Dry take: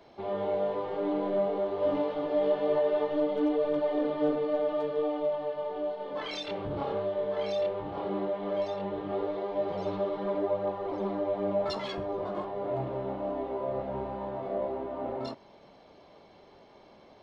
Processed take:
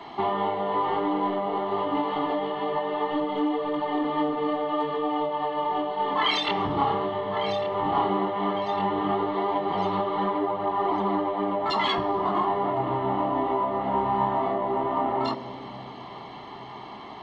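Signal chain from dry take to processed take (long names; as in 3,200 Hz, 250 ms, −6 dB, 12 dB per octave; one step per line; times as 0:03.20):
downward compressor, threshold −35 dBFS, peak gain reduction 12.5 dB
convolution reverb RT60 3.5 s, pre-delay 3 ms, DRR 19 dB
level +8 dB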